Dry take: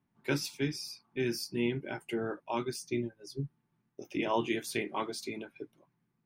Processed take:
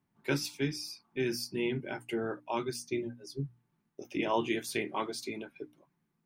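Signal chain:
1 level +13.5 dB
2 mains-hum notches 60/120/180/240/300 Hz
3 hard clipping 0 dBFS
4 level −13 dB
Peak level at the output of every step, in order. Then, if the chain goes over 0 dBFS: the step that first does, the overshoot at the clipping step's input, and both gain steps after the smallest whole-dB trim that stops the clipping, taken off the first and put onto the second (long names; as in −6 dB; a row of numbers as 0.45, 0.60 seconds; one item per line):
−3.5, −4.0, −4.0, −17.0 dBFS
no step passes full scale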